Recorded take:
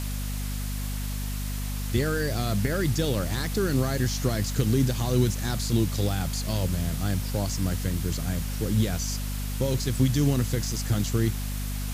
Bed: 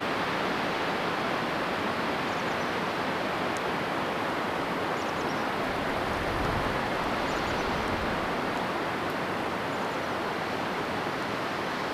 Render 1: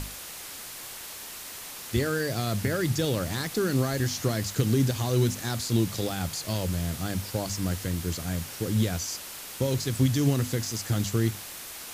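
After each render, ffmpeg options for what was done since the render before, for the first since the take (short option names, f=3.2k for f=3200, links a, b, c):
-af "bandreject=f=50:t=h:w=6,bandreject=f=100:t=h:w=6,bandreject=f=150:t=h:w=6,bandreject=f=200:t=h:w=6,bandreject=f=250:t=h:w=6"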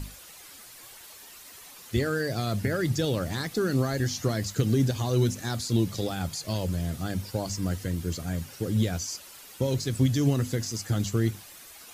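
-af "afftdn=nr=10:nf=-41"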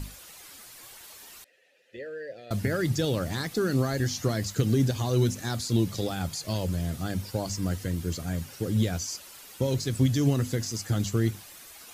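-filter_complex "[0:a]asettb=1/sr,asplit=3[a][b][c];[a]atrim=end=1.444[d];[b]atrim=start=1.44:end=2.51,asetpts=PTS-STARTPTS,afade=t=in:d=0.004:c=qsin,afade=t=out:st=1.066:d=0.004:c=qsin,asplit=3[e][f][g];[e]bandpass=f=530:t=q:w=8,volume=0dB[h];[f]bandpass=f=1.84k:t=q:w=8,volume=-6dB[i];[g]bandpass=f=2.48k:t=q:w=8,volume=-9dB[j];[h][i][j]amix=inputs=3:normalize=0[k];[c]atrim=start=2.506[l];[d][k]acrossfade=d=0.004:c1=hsin:c2=qsin[m];[m][l]acrossfade=d=0.004:c1=qsin:c2=hsin"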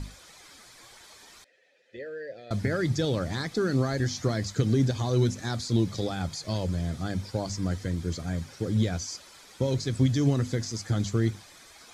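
-af "lowpass=6.6k,bandreject=f=2.8k:w=7.5"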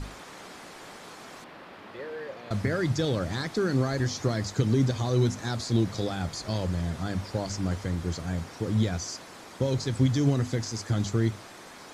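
-filter_complex "[1:a]volume=-17dB[a];[0:a][a]amix=inputs=2:normalize=0"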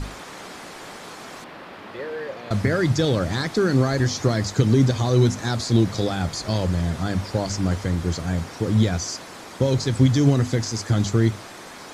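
-af "volume=6.5dB"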